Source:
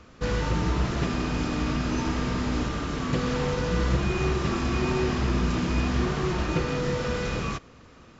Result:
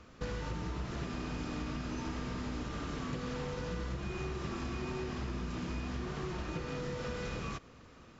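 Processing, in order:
downward compressor, threshold −30 dBFS, peak gain reduction 11 dB
level −5 dB

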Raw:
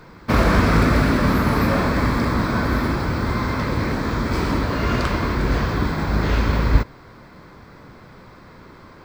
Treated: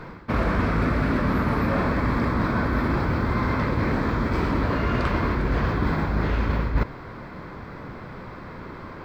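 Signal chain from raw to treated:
bass and treble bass 0 dB, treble −12 dB
reversed playback
downward compressor 6 to 1, threshold −26 dBFS, peak gain reduction 17 dB
reversed playback
level +6 dB

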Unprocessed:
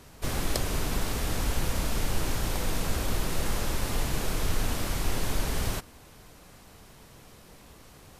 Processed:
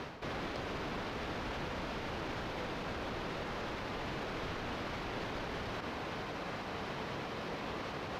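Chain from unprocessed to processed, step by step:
high-pass filter 320 Hz 6 dB per octave
hard clipping −21.5 dBFS, distortion −26 dB
reversed playback
downward compressor 6 to 1, threshold −48 dBFS, peak gain reduction 18.5 dB
reversed playback
brickwall limiter −45.5 dBFS, peak gain reduction 9.5 dB
high-frequency loss of the air 260 metres
level +18 dB

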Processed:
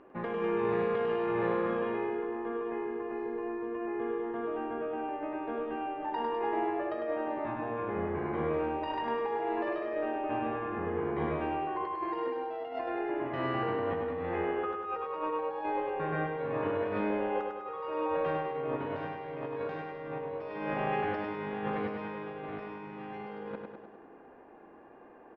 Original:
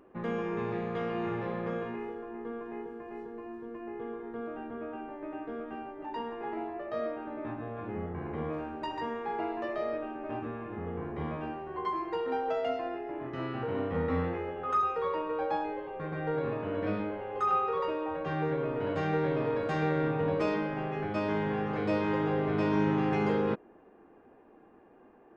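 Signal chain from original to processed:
low-shelf EQ 360 Hz −9.5 dB
notch filter 1,300 Hz, Q 16
compressor whose output falls as the input rises −38 dBFS, ratio −0.5
high-frequency loss of the air 250 metres
repeating echo 101 ms, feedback 56%, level −4.5 dB
level +4 dB

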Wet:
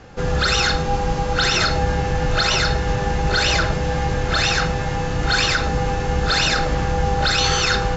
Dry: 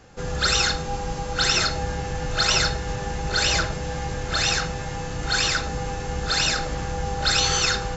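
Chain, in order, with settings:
high-frequency loss of the air 100 metres
brickwall limiter −16.5 dBFS, peak gain reduction 6.5 dB
level +8 dB

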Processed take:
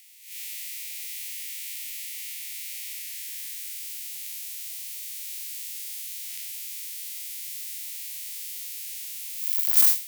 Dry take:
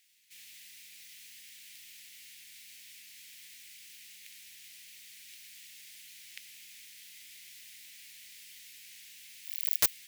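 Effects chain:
spectrum smeared in time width 129 ms
first-order pre-emphasis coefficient 0.9
sine wavefolder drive 12 dB, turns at −6 dBFS
high-pass filter sweep 2,000 Hz → 830 Hz, 0:02.88–0:04.35

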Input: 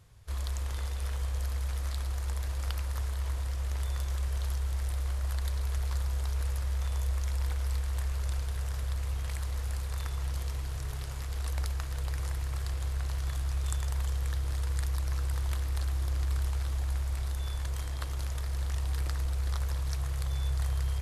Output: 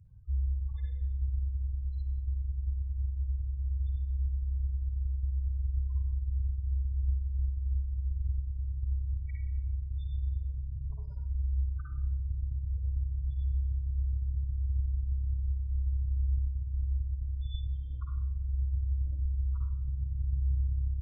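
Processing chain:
loose part that buzzes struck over −32 dBFS, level −37 dBFS
reverb reduction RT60 1.5 s
gate on every frequency bin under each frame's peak −15 dB strong
convolution reverb RT60 0.65 s, pre-delay 52 ms, DRR −2 dB

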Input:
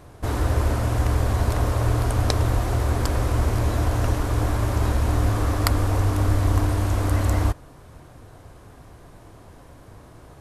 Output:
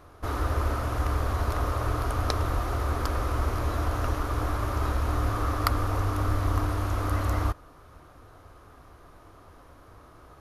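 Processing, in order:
thirty-one-band graphic EQ 125 Hz −10 dB, 200 Hz −8 dB, 1,250 Hz +10 dB, 8,000 Hz −9 dB
level −5 dB

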